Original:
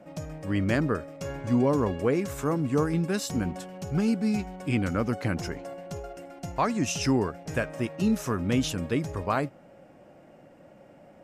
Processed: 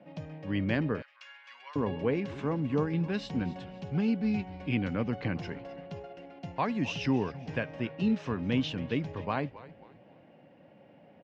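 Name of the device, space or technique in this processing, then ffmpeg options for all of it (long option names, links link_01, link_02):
frequency-shifting delay pedal into a guitar cabinet: -filter_complex "[0:a]highpass=frequency=73:width=0.5412,highpass=frequency=73:width=1.3066,asplit=4[link_01][link_02][link_03][link_04];[link_02]adelay=262,afreqshift=-130,volume=-17dB[link_05];[link_03]adelay=524,afreqshift=-260,volume=-25.6dB[link_06];[link_04]adelay=786,afreqshift=-390,volume=-34.3dB[link_07];[link_01][link_05][link_06][link_07]amix=inputs=4:normalize=0,highpass=92,equalizer=frequency=360:width_type=q:width=4:gain=-4,equalizer=frequency=630:width_type=q:width=4:gain=-4,equalizer=frequency=1300:width_type=q:width=4:gain=-8,equalizer=frequency=2900:width_type=q:width=4:gain=3,lowpass=frequency=4000:width=0.5412,lowpass=frequency=4000:width=1.3066,asettb=1/sr,asplit=3[link_08][link_09][link_10];[link_08]atrim=end=1.024[link_11];[link_09]atrim=start=1.02:end=1.76,asetpts=PTS-STARTPTS,afade=type=in:duration=0.004:curve=qsin,afade=type=out:start_time=0.736:duration=0.004:curve=qsin,highpass=frequency=1300:width=0.5412,highpass=frequency=1300:width=1.3066[link_12];[link_10]atrim=start=1.756[link_13];[link_11][link_12]acrossfade=duration=0.004:curve1=hsin:curve2=qsin[link_14];[link_14][link_13]acrossfade=duration=0.004:curve1=qsin:curve2=hsin,volume=-2.5dB"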